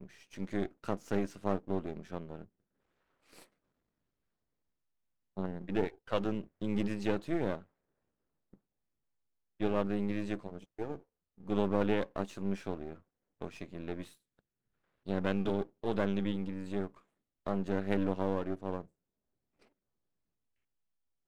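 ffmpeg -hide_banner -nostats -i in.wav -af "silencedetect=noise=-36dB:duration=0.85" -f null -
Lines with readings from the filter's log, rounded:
silence_start: 2.42
silence_end: 5.37 | silence_duration: 2.95
silence_start: 7.59
silence_end: 9.61 | silence_duration: 2.02
silence_start: 14.02
silence_end: 15.08 | silence_duration: 1.05
silence_start: 18.81
silence_end: 21.27 | silence_duration: 2.46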